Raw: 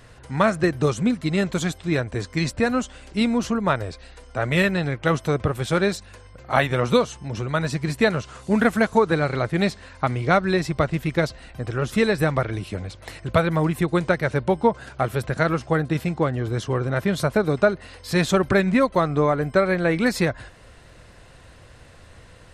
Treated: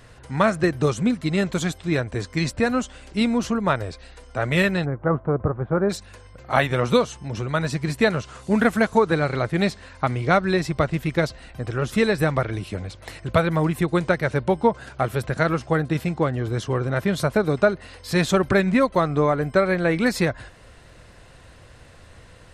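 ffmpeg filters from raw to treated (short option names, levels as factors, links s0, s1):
-filter_complex "[0:a]asplit=3[s0][s1][s2];[s0]afade=t=out:st=4.84:d=0.02[s3];[s1]lowpass=f=1300:w=0.5412,lowpass=f=1300:w=1.3066,afade=t=in:st=4.84:d=0.02,afade=t=out:st=5.89:d=0.02[s4];[s2]afade=t=in:st=5.89:d=0.02[s5];[s3][s4][s5]amix=inputs=3:normalize=0"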